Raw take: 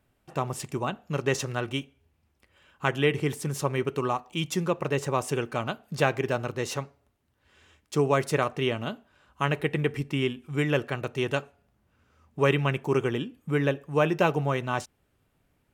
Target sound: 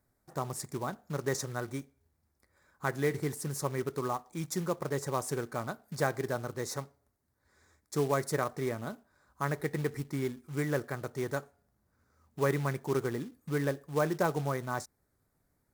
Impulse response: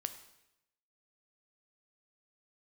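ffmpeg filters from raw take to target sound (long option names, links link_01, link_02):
-af "asuperstop=centerf=2900:order=4:qfactor=1.5,highshelf=frequency=7100:gain=7.5,acrusher=bits=4:mode=log:mix=0:aa=0.000001,volume=-6dB"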